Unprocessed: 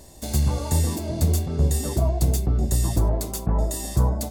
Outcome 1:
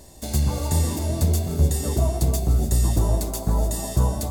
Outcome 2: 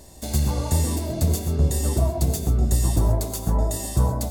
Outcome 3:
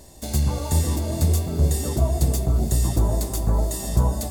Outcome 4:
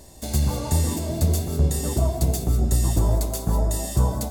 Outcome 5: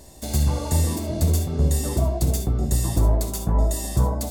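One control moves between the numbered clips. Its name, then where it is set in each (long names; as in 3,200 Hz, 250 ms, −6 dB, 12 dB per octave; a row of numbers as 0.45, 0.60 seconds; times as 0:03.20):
reverb whose tail is shaped and stops, gate: 330, 150, 530, 220, 90 milliseconds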